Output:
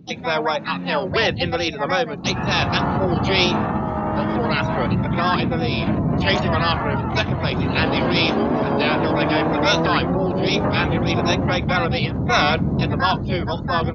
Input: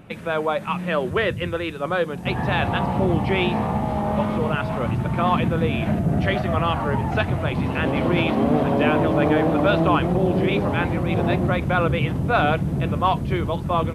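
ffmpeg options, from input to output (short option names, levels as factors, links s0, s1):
-filter_complex "[0:a]afftdn=nr=25:nf=-39,tremolo=f=0.63:d=0.32,lowpass=f=4300:t=q:w=9.4,acrossover=split=1100[s0][s1];[s0]alimiter=limit=0.168:level=0:latency=1:release=31[s2];[s2][s1]amix=inputs=2:normalize=0,asplit=2[s3][s4];[s4]asetrate=66075,aresample=44100,atempo=0.66742,volume=0.631[s5];[s3][s5]amix=inputs=2:normalize=0,volume=1.26"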